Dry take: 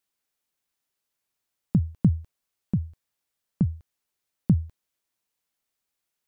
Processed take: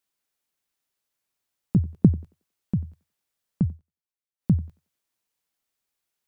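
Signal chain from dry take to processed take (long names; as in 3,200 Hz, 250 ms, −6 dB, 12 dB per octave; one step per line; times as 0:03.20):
0:01.76–0:02.18: parametric band 370 Hz +12 dB 1.3 octaves
feedback echo with a high-pass in the loop 91 ms, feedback 33%, high-pass 310 Hz, level −17.5 dB
0:03.67–0:04.51: duck −15.5 dB, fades 0.13 s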